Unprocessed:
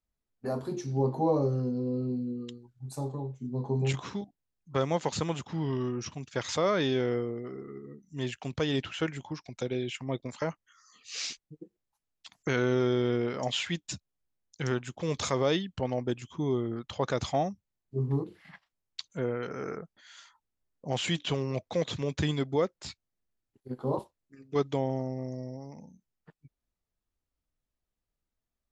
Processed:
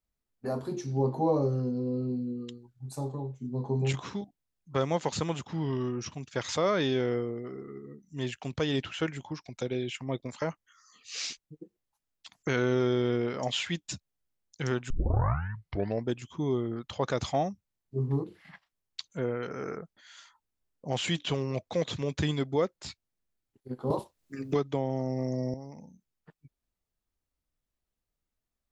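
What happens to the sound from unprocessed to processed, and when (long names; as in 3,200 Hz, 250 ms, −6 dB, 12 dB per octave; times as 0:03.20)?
0:14.90: tape start 1.17 s
0:23.90–0:25.54: multiband upward and downward compressor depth 100%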